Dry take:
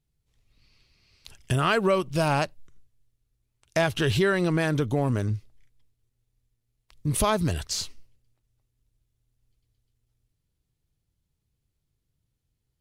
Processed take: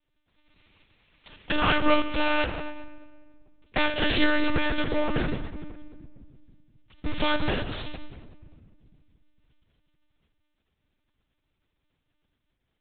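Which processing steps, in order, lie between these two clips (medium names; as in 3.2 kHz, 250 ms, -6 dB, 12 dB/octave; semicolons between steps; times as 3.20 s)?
spectral contrast reduction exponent 0.57; reverberation RT60 1.8 s, pre-delay 5 ms, DRR 5 dB; monotone LPC vocoder at 8 kHz 300 Hz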